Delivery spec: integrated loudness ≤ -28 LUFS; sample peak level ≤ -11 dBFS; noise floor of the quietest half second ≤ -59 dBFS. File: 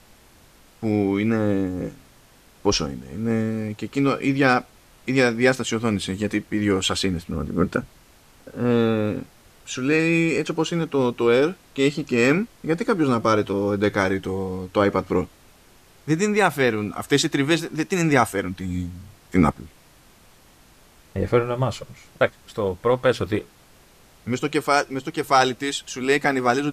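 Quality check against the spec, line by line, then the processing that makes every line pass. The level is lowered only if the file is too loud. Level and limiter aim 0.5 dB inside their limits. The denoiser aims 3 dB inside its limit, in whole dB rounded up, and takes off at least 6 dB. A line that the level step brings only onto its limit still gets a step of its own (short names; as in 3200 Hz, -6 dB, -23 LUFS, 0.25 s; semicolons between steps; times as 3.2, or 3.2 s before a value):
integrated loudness -22.5 LUFS: fail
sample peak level -5.0 dBFS: fail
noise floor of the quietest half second -53 dBFS: fail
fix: denoiser 6 dB, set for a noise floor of -53 dBFS; gain -6 dB; limiter -11.5 dBFS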